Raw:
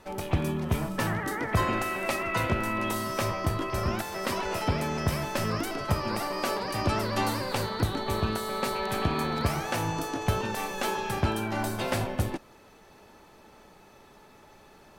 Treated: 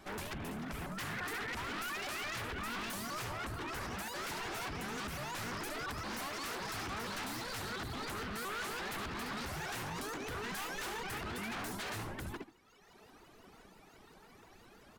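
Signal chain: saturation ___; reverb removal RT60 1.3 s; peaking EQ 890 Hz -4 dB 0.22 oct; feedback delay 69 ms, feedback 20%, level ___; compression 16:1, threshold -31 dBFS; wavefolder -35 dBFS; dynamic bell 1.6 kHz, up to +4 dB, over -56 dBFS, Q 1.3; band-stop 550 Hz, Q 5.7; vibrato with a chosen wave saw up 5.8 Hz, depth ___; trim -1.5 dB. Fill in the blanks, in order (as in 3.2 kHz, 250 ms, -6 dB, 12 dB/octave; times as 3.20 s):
-16.5 dBFS, -8 dB, 250 cents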